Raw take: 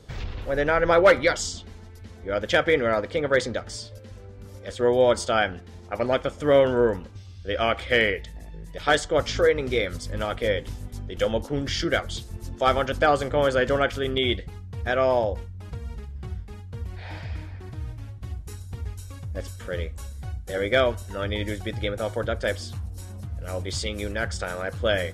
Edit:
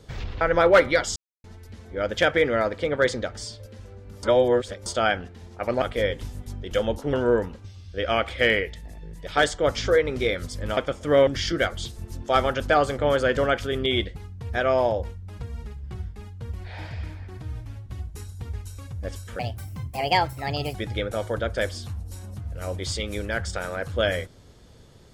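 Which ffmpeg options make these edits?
-filter_complex "[0:a]asplit=12[s0][s1][s2][s3][s4][s5][s6][s7][s8][s9][s10][s11];[s0]atrim=end=0.412[s12];[s1]atrim=start=0.728:end=1.48,asetpts=PTS-STARTPTS,afade=t=out:st=0.748:d=0.004:c=hsin[s13];[s2]atrim=start=1.48:end=1.76,asetpts=PTS-STARTPTS,volume=0[s14];[s3]atrim=start=1.76:end=4.552,asetpts=PTS-STARTPTS,afade=t=in:d=0.004:c=hsin[s15];[s4]atrim=start=4.548:end=5.182,asetpts=PTS-STARTPTS,areverse[s16];[s5]atrim=start=5.178:end=6.142[s17];[s6]atrim=start=10.278:end=11.592[s18];[s7]atrim=start=6.638:end=10.282[s19];[s8]atrim=start=6.138:end=6.642[s20];[s9]atrim=start=11.588:end=19.714[s21];[s10]atrim=start=19.71:end=21.61,asetpts=PTS-STARTPTS,asetrate=61740,aresample=44100,atrim=end_sample=59850,asetpts=PTS-STARTPTS[s22];[s11]atrim=start=21.606[s23];[s13][s14][s15]concat=n=3:v=0:a=1[s24];[s12][s24]acrossfade=d=0.004:c1=hsin:c2=hsin[s25];[s25][s16]acrossfade=d=0.004:c1=hsin:c2=hsin[s26];[s26][s17]acrossfade=d=0.004:c1=hsin:c2=hsin[s27];[s27][s18]acrossfade=d=0.004:c1=hsin:c2=hsin[s28];[s28][s19]acrossfade=d=0.004:c1=hsin:c2=hsin[s29];[s29][s20]acrossfade=d=0.004:c1=hsin:c2=hsin[s30];[s30][s21]acrossfade=d=0.004:c1=hsin:c2=hsin[s31];[s31][s22]acrossfade=d=0.004:c1=hsin:c2=hsin[s32];[s32][s23]acrossfade=d=0.004:c1=hsin:c2=hsin"

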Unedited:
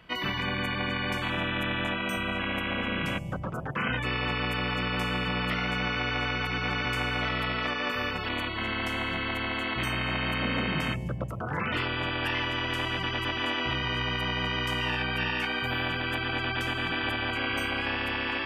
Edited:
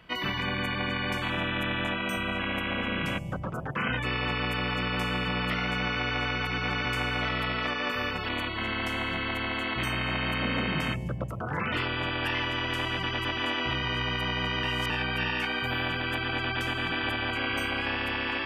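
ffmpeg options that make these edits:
-filter_complex "[0:a]asplit=3[s0][s1][s2];[s0]atrim=end=14.632[s3];[s1]atrim=start=14.628:end=14.902,asetpts=PTS-STARTPTS,areverse[s4];[s2]atrim=start=14.898[s5];[s3][s4]acrossfade=d=0.004:c1=hsin:c2=hsin[s6];[s6][s5]acrossfade=d=0.004:c1=hsin:c2=hsin"

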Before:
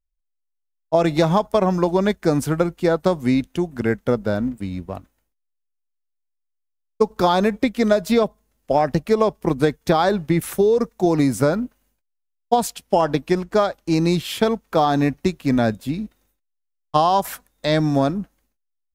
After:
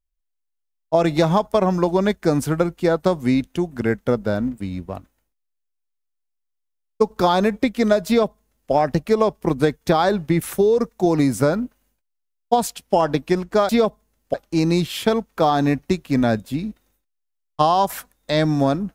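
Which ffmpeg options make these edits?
-filter_complex "[0:a]asplit=3[s0][s1][s2];[s0]atrim=end=13.692[s3];[s1]atrim=start=8.068:end=8.722[s4];[s2]atrim=start=13.688[s5];[s3][s4]acrossfade=d=0.004:c1=hsin:c2=hsin[s6];[s6][s5]acrossfade=d=0.004:c1=hsin:c2=hsin"

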